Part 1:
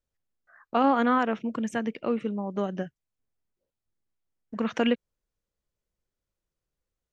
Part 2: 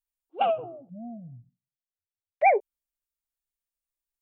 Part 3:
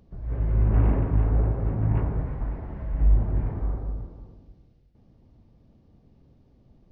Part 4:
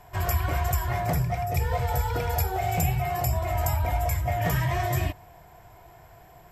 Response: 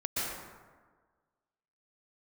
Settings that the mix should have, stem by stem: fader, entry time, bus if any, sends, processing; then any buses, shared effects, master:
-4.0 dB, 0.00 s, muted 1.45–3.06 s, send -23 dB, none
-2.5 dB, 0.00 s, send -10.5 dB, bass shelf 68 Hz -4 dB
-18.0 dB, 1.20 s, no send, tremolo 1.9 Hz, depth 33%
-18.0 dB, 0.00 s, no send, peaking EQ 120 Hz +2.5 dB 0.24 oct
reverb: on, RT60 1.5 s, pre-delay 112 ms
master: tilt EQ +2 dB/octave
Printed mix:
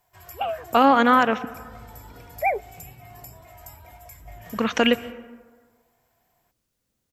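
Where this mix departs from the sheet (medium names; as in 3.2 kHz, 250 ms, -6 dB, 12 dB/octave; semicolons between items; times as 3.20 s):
stem 1 -4.0 dB -> +7.0 dB; stem 2: send off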